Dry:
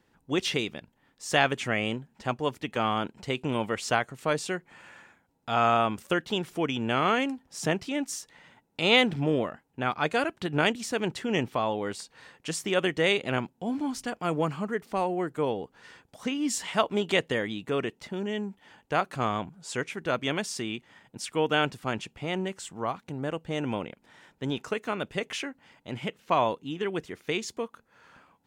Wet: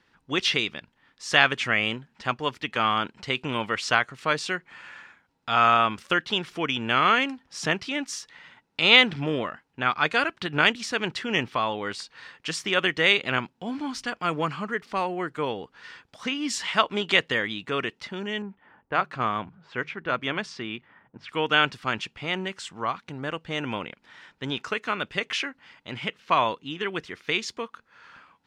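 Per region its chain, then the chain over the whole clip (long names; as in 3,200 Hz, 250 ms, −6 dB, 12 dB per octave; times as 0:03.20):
0:18.42–0:21.29: mains-hum notches 50/100/150 Hz + low-pass that shuts in the quiet parts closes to 990 Hz, open at −25 dBFS + high-shelf EQ 2,700 Hz −10.5 dB
whole clip: Bessel low-pass filter 9,500 Hz, order 2; flat-topped bell 2,400 Hz +8.5 dB 2.7 octaves; level −1.5 dB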